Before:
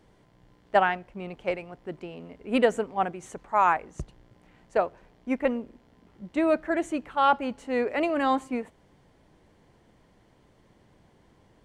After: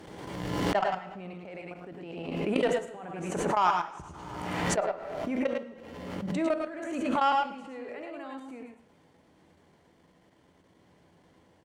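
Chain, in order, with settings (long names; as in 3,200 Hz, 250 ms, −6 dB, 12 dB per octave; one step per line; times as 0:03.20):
high-pass filter 63 Hz
low-shelf EQ 120 Hz −6.5 dB
output level in coarse steps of 21 dB
harmonic generator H 5 −21 dB, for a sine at −11 dBFS
on a send: multi-tap delay 98/110 ms −7/−4.5 dB
on the sum: coupled-rooms reverb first 0.83 s, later 2.4 s, from −18 dB, DRR 10 dB
background raised ahead of every attack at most 33 dB per second
level −4.5 dB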